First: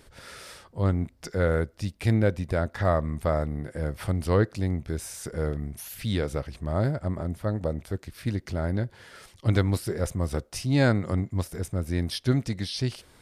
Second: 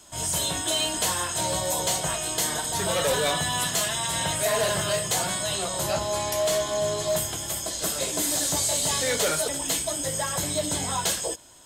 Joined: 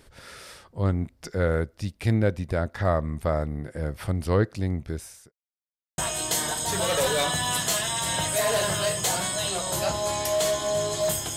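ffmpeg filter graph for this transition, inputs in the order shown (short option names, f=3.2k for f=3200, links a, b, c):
-filter_complex "[0:a]apad=whole_dur=11.36,atrim=end=11.36,asplit=2[a][b];[a]atrim=end=5.32,asetpts=PTS-STARTPTS,afade=t=out:st=4.88:d=0.44[c];[b]atrim=start=5.32:end=5.98,asetpts=PTS-STARTPTS,volume=0[d];[1:a]atrim=start=2.05:end=7.43,asetpts=PTS-STARTPTS,afade=t=in:d=0.004:c=hsin[e];[c][d][e]concat=n=3:v=0:a=1"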